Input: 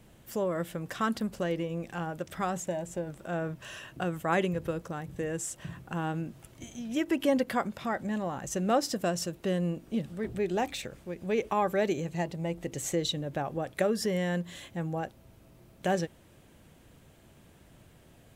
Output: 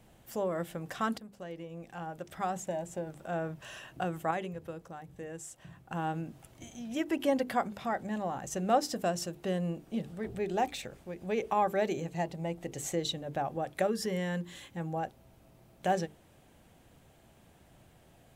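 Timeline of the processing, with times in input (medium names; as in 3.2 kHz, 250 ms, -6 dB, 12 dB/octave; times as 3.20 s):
1.18–2.84 s: fade in, from -14.5 dB
4.31–5.91 s: gain -6.5 dB
13.87–14.80 s: peaking EQ 670 Hz -12.5 dB 0.25 oct
whole clip: peaking EQ 760 Hz +6 dB 0.4 oct; hum notches 50/100/150/200/250/300/350/400/450 Hz; trim -3 dB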